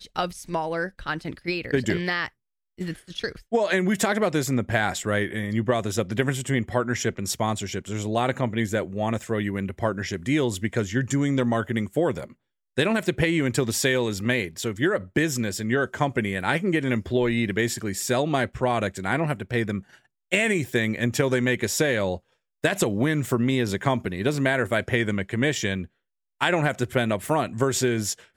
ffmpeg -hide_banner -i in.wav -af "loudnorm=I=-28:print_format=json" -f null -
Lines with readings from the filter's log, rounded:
"input_i" : "-25.1",
"input_tp" : "-5.7",
"input_lra" : "1.9",
"input_thresh" : "-35.2",